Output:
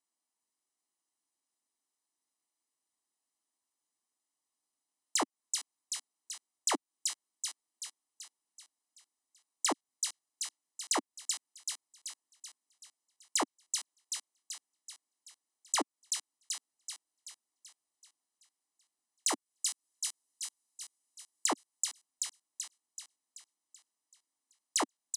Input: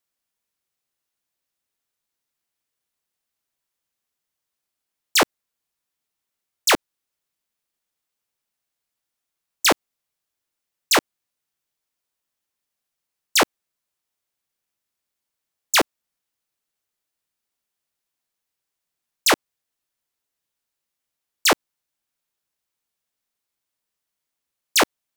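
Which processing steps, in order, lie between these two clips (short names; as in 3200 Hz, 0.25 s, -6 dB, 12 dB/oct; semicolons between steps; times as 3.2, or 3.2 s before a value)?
19.28–21.46 high shelf 4700 Hz +9.5 dB; thin delay 0.382 s, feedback 50%, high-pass 3400 Hz, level -5 dB; compressor 5:1, threshold -24 dBFS, peak gain reduction 13.5 dB; elliptic band-pass 270–9600 Hz, stop band 40 dB; bell 2400 Hz -11.5 dB 2.2 oct; comb 1 ms, depth 55%; soft clip -15 dBFS, distortion -25 dB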